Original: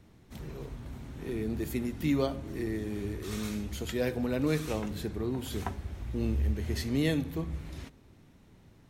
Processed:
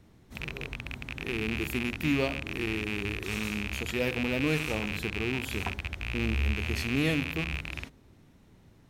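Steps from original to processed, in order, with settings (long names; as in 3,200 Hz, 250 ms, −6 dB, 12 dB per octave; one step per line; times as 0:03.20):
loose part that buzzes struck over −38 dBFS, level −21 dBFS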